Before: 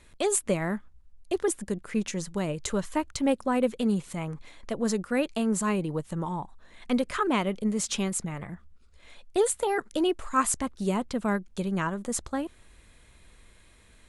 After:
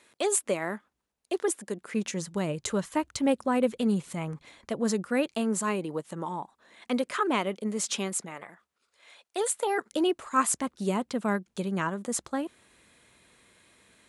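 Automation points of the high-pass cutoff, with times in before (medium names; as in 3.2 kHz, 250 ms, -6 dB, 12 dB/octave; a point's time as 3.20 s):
1.67 s 310 Hz
2.39 s 91 Hz
4.87 s 91 Hz
5.66 s 250 Hz
8.12 s 250 Hz
8.53 s 570 Hz
9.45 s 570 Hz
10.02 s 160 Hz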